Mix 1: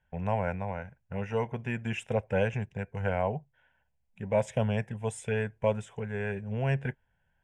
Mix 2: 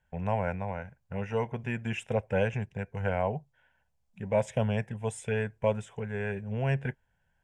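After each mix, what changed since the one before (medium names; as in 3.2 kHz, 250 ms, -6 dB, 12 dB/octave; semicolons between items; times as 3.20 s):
second voice +10.0 dB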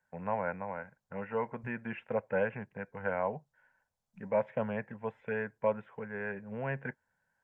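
first voice: add cabinet simulation 250–2000 Hz, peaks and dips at 390 Hz -6 dB, 710 Hz -6 dB, 1.2 kHz +4 dB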